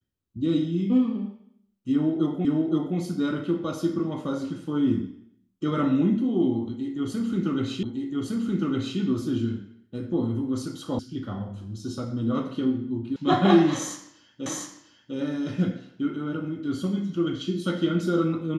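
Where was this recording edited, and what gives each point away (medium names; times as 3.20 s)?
2.45 s: repeat of the last 0.52 s
7.83 s: repeat of the last 1.16 s
10.99 s: sound stops dead
13.16 s: sound stops dead
14.46 s: repeat of the last 0.7 s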